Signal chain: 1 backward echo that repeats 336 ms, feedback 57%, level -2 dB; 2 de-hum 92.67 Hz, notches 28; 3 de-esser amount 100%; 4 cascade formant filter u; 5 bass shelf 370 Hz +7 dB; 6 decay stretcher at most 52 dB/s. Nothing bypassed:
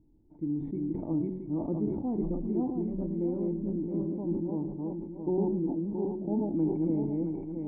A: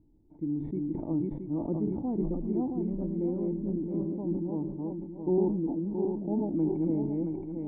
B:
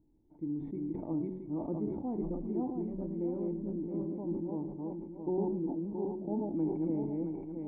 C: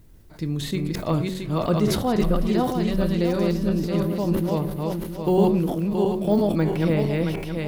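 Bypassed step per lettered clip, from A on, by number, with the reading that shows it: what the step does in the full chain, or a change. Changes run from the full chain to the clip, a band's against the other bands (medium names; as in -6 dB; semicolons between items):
2, crest factor change +1.5 dB; 5, 1 kHz band +3.0 dB; 4, 1 kHz band +5.5 dB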